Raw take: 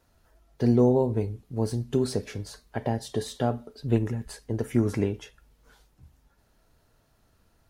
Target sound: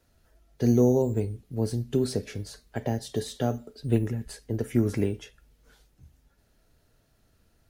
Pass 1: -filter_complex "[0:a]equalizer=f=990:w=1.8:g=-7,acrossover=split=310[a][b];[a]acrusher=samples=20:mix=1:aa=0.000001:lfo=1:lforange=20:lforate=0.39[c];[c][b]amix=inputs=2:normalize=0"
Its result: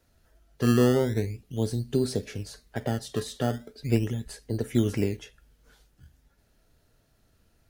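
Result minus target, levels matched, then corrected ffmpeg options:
decimation with a swept rate: distortion +13 dB
-filter_complex "[0:a]equalizer=f=990:w=1.8:g=-7,acrossover=split=310[a][b];[a]acrusher=samples=5:mix=1:aa=0.000001:lfo=1:lforange=5:lforate=0.39[c];[c][b]amix=inputs=2:normalize=0"

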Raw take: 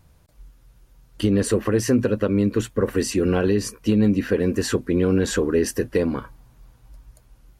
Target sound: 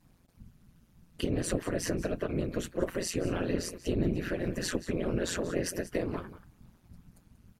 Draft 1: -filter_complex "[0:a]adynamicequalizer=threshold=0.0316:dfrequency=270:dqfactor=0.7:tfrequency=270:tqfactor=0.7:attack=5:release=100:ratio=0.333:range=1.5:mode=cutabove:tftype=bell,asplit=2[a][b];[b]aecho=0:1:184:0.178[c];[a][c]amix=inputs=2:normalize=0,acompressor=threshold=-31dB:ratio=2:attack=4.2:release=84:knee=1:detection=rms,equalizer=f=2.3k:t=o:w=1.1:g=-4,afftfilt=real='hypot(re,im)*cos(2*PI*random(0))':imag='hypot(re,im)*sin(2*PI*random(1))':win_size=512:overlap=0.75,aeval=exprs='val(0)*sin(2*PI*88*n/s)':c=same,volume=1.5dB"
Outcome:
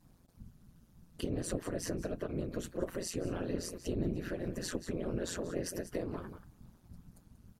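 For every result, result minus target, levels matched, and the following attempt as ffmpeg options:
compressor: peak gain reduction +5.5 dB; 2000 Hz band -3.0 dB
-filter_complex "[0:a]adynamicequalizer=threshold=0.0316:dfrequency=270:dqfactor=0.7:tfrequency=270:tqfactor=0.7:attack=5:release=100:ratio=0.333:range=1.5:mode=cutabove:tftype=bell,asplit=2[a][b];[b]aecho=0:1:184:0.178[c];[a][c]amix=inputs=2:normalize=0,acompressor=threshold=-20.5dB:ratio=2:attack=4.2:release=84:knee=1:detection=rms,equalizer=f=2.3k:t=o:w=1.1:g=-4,afftfilt=real='hypot(re,im)*cos(2*PI*random(0))':imag='hypot(re,im)*sin(2*PI*random(1))':win_size=512:overlap=0.75,aeval=exprs='val(0)*sin(2*PI*88*n/s)':c=same,volume=1.5dB"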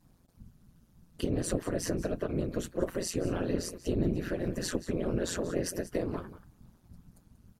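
2000 Hz band -3.5 dB
-filter_complex "[0:a]adynamicequalizer=threshold=0.0316:dfrequency=270:dqfactor=0.7:tfrequency=270:tqfactor=0.7:attack=5:release=100:ratio=0.333:range=1.5:mode=cutabove:tftype=bell,asplit=2[a][b];[b]aecho=0:1:184:0.178[c];[a][c]amix=inputs=2:normalize=0,acompressor=threshold=-20.5dB:ratio=2:attack=4.2:release=84:knee=1:detection=rms,equalizer=f=2.3k:t=o:w=1.1:g=2,afftfilt=real='hypot(re,im)*cos(2*PI*random(0))':imag='hypot(re,im)*sin(2*PI*random(1))':win_size=512:overlap=0.75,aeval=exprs='val(0)*sin(2*PI*88*n/s)':c=same,volume=1.5dB"

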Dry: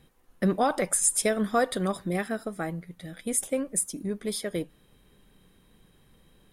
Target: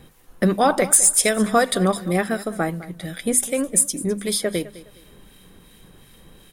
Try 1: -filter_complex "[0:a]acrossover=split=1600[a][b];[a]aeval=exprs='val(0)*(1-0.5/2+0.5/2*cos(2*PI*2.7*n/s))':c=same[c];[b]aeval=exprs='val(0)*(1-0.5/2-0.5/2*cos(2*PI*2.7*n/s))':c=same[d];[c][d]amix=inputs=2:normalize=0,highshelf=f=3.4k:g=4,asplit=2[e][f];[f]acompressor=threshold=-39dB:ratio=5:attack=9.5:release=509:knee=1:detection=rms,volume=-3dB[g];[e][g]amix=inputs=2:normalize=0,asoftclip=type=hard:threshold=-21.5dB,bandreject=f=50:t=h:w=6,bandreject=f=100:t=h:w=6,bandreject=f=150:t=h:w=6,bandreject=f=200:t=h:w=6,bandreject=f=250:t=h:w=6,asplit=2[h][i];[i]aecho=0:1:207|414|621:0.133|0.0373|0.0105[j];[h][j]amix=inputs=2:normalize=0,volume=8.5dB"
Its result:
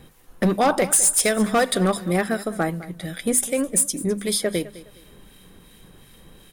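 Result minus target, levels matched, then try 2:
hard clip: distortion +10 dB
-filter_complex "[0:a]acrossover=split=1600[a][b];[a]aeval=exprs='val(0)*(1-0.5/2+0.5/2*cos(2*PI*2.7*n/s))':c=same[c];[b]aeval=exprs='val(0)*(1-0.5/2-0.5/2*cos(2*PI*2.7*n/s))':c=same[d];[c][d]amix=inputs=2:normalize=0,highshelf=f=3.4k:g=4,asplit=2[e][f];[f]acompressor=threshold=-39dB:ratio=5:attack=9.5:release=509:knee=1:detection=rms,volume=-3dB[g];[e][g]amix=inputs=2:normalize=0,asoftclip=type=hard:threshold=-15.5dB,bandreject=f=50:t=h:w=6,bandreject=f=100:t=h:w=6,bandreject=f=150:t=h:w=6,bandreject=f=200:t=h:w=6,bandreject=f=250:t=h:w=6,asplit=2[h][i];[i]aecho=0:1:207|414|621:0.133|0.0373|0.0105[j];[h][j]amix=inputs=2:normalize=0,volume=8.5dB"

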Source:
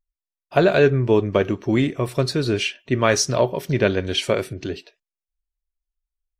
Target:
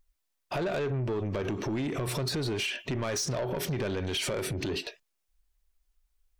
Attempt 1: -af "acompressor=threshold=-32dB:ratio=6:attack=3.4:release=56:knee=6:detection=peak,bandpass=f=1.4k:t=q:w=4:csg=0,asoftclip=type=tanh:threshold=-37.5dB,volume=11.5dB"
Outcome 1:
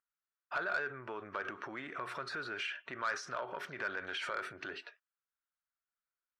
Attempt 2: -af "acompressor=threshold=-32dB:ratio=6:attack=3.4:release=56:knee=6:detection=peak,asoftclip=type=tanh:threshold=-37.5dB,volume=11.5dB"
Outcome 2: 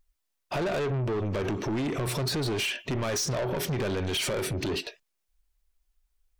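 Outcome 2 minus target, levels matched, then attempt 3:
compressor: peak gain reduction -5.5 dB
-af "acompressor=threshold=-38.5dB:ratio=6:attack=3.4:release=56:knee=6:detection=peak,asoftclip=type=tanh:threshold=-37.5dB,volume=11.5dB"

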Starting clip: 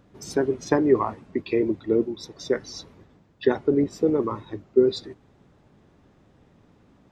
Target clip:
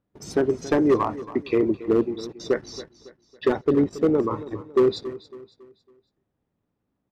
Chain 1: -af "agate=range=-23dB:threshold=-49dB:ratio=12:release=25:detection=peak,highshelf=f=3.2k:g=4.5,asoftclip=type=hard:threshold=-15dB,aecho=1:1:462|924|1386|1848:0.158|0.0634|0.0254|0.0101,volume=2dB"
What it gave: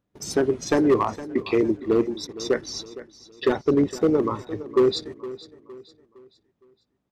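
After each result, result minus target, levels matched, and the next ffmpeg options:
echo 0.185 s late; 8000 Hz band +7.5 dB
-af "agate=range=-23dB:threshold=-49dB:ratio=12:release=25:detection=peak,highshelf=f=3.2k:g=4.5,asoftclip=type=hard:threshold=-15dB,aecho=1:1:277|554|831|1108:0.158|0.0634|0.0254|0.0101,volume=2dB"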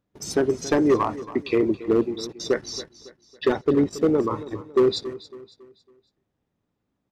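8000 Hz band +7.5 dB
-af "agate=range=-23dB:threshold=-49dB:ratio=12:release=25:detection=peak,highshelf=f=3.2k:g=-5,asoftclip=type=hard:threshold=-15dB,aecho=1:1:277|554|831|1108:0.158|0.0634|0.0254|0.0101,volume=2dB"

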